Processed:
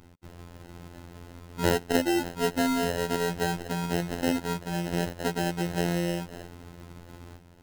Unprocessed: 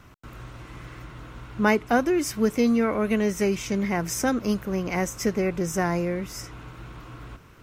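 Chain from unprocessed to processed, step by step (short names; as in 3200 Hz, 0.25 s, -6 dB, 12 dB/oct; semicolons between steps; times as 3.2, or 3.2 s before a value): sample-and-hold 38×; robotiser 86.4 Hz; gain -1 dB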